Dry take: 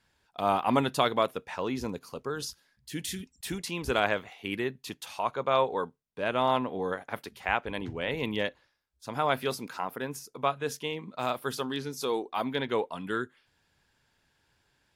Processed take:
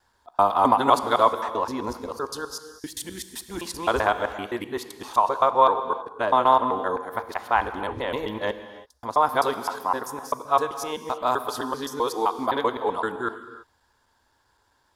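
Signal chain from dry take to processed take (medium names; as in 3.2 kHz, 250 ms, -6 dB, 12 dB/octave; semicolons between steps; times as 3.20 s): time reversed locally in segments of 129 ms; fifteen-band graphic EQ 160 Hz -12 dB, 1 kHz +9 dB, 2.5 kHz -10 dB; gated-style reverb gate 360 ms flat, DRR 10 dB; trim +4 dB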